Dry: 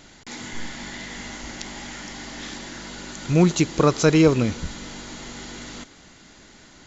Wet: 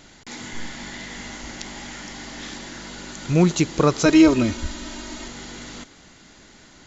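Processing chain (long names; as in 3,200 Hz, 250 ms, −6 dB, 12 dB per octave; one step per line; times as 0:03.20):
0:04.05–0:05.28: comb filter 3.2 ms, depth 83%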